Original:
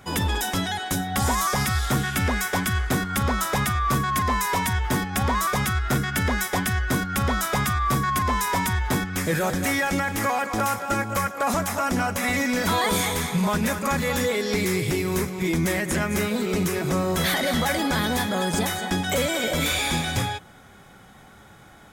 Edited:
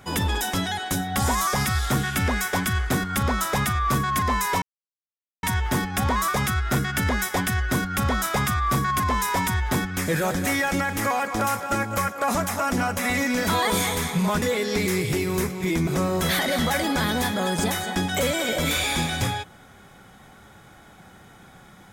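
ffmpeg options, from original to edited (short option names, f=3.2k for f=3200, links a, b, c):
-filter_complex "[0:a]asplit=4[a][b][c][d];[a]atrim=end=4.62,asetpts=PTS-STARTPTS,afade=t=out:st=4.616:d=0.004:c=hsin,apad=pad_dur=0.81[e];[b]atrim=start=4.62:end=13.612,asetpts=PTS-STARTPTS,afade=t=in:d=0.004:c=hsin[f];[c]atrim=start=14.198:end=15.652[g];[d]atrim=start=16.818[h];[e][f]concat=n=2:v=0:a=1[i];[i][g]acrossfade=d=0.004:c1=hsin:c2=hsin[j];[j][h]acrossfade=d=0.004:c1=hsin:c2=hsin"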